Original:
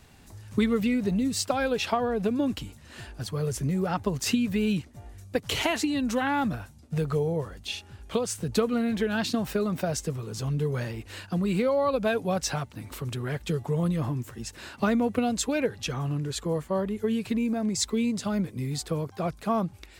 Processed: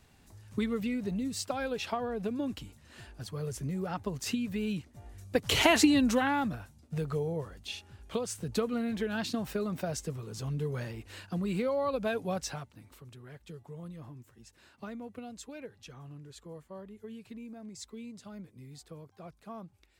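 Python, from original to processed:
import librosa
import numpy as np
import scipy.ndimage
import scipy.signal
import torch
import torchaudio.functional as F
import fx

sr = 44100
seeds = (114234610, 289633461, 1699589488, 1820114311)

y = fx.gain(x, sr, db=fx.line((4.8, -7.5), (5.83, 5.0), (6.53, -6.0), (12.33, -6.0), (13.07, -18.0)))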